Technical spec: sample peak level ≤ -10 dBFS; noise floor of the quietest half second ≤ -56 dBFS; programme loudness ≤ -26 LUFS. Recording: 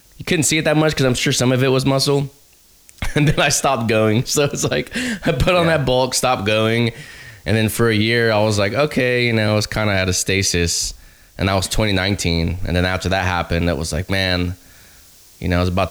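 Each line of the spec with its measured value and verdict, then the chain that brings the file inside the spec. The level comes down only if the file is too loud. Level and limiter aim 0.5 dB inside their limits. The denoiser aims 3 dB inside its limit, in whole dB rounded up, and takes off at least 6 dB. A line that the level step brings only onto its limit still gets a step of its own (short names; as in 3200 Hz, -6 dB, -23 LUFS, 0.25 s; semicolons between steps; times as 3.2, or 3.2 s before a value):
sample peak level -5.5 dBFS: fail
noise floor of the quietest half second -51 dBFS: fail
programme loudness -17.5 LUFS: fail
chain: gain -9 dB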